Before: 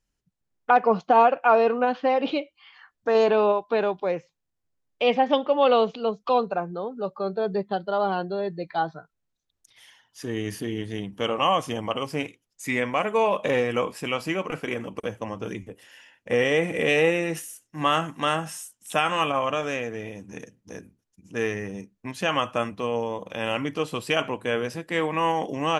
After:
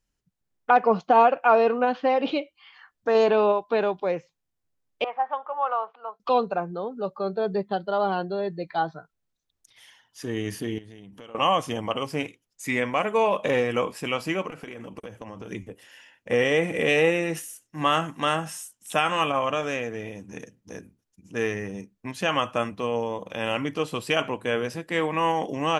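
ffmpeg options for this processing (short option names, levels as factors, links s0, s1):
-filter_complex "[0:a]asettb=1/sr,asplit=3[s0][s1][s2];[s0]atrim=end=5.044[s3];[s1]atrim=start=5.04:end=6.2,asetpts=PTS-STARTPTS,afade=t=in:d=0.004:c=qsin,afade=t=out:st=1.156:d=0.004:c=qsin,asuperpass=centerf=1100:order=4:qfactor=1.5[s4];[s2]atrim=start=6.196[s5];[s3][s4]acrossfade=d=0.004:c1=hsin:c2=qsin[s6];[s6][s5]acrossfade=d=0.004:c1=qsin:c2=hsin,asettb=1/sr,asplit=3[s7][s8][s9];[s7]atrim=end=10.784[s10];[s8]atrim=start=10.78:end=11.35,asetpts=PTS-STARTPTS,afade=t=in:d=0.004:c=qsin,afade=t=out:st=0.566:d=0.004:c=qsin,acompressor=threshold=0.00794:ratio=6:attack=3.2:release=140:knee=1:detection=peak[s11];[s9]atrim=start=11.346[s12];[s10][s11]acrossfade=d=0.004:c1=hsin:c2=qsin[s13];[s13][s12]acrossfade=d=0.004:c1=qsin:c2=hsin,asettb=1/sr,asplit=3[s14][s15][s16];[s14]atrim=end=14.494[s17];[s15]atrim=start=14.49:end=15.52,asetpts=PTS-STARTPTS,afade=t=in:d=0.004:c=qsin,afade=t=out:st=1.026:d=0.004:c=qsin,acompressor=threshold=0.02:ratio=10:attack=3.2:release=140:knee=1:detection=peak[s18];[s16]atrim=start=15.516[s19];[s17][s18]acrossfade=d=0.004:c1=hsin:c2=qsin[s20];[s20][s19]acrossfade=d=0.004:c1=qsin:c2=hsin"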